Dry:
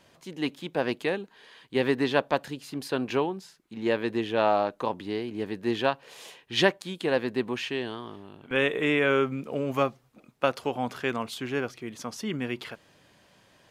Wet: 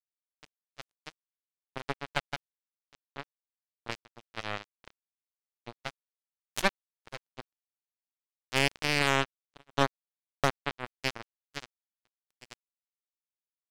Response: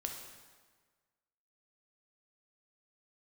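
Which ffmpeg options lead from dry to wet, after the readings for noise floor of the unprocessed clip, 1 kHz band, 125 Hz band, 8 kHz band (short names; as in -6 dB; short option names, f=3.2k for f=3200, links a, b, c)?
-62 dBFS, -5.5 dB, -4.0 dB, +2.0 dB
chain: -af "aeval=exprs='if(lt(val(0),0),0.251*val(0),val(0))':c=same,acrusher=bits=2:mix=0:aa=0.5"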